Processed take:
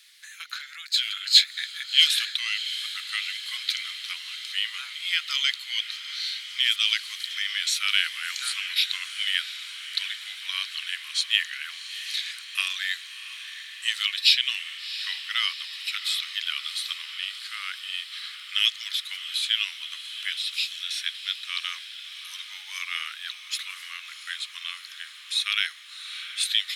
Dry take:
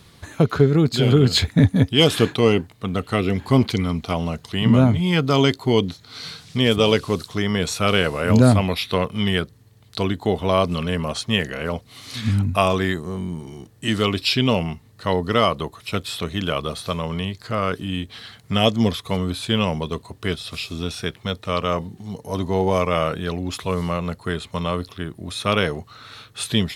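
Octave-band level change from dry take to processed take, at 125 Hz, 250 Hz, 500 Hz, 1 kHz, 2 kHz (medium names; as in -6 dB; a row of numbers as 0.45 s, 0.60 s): under -40 dB, under -40 dB, under -40 dB, -18.5 dB, -0.5 dB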